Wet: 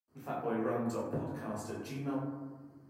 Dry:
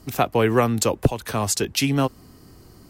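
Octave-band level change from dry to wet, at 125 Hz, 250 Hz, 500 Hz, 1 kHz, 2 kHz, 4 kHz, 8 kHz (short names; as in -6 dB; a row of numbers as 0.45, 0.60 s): -17.0, -12.5, -14.5, -15.5, -19.0, -28.0, -27.0 dB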